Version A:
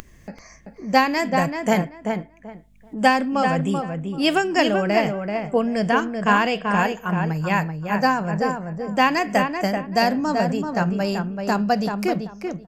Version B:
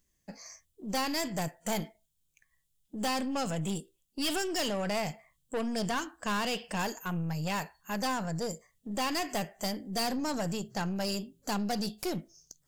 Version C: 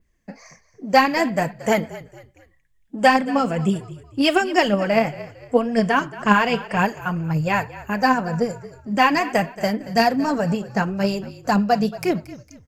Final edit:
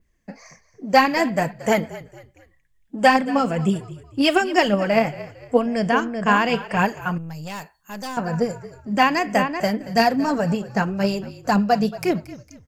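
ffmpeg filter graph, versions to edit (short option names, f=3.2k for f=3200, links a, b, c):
-filter_complex "[0:a]asplit=2[a][b];[2:a]asplit=4[c][d][e][f];[c]atrim=end=5.662[g];[a]atrim=start=5.658:end=6.492[h];[d]atrim=start=6.488:end=7.182[i];[1:a]atrim=start=7.178:end=8.172[j];[e]atrim=start=8.168:end=9.032[k];[b]atrim=start=9.028:end=9.602[l];[f]atrim=start=9.598[m];[g][h]acrossfade=d=0.004:c1=hsin:c2=hsin[n];[n][i]acrossfade=d=0.004:c1=hsin:c2=hsin[o];[o][j]acrossfade=d=0.004:c1=hsin:c2=hsin[p];[p][k]acrossfade=d=0.004:c1=hsin:c2=hsin[q];[q][l]acrossfade=d=0.004:c1=hsin:c2=hsin[r];[r][m]acrossfade=d=0.004:c1=hsin:c2=hsin"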